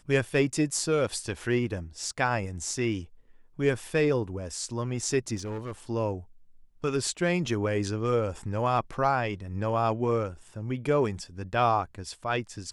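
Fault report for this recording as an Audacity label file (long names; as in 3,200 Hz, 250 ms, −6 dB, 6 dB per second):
5.350000	5.720000	clipping −30.5 dBFS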